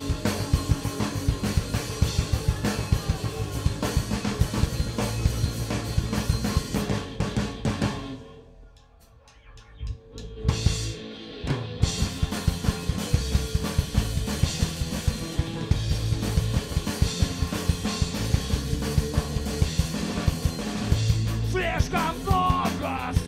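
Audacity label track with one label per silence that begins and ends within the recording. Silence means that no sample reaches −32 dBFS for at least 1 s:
8.160000	9.810000	silence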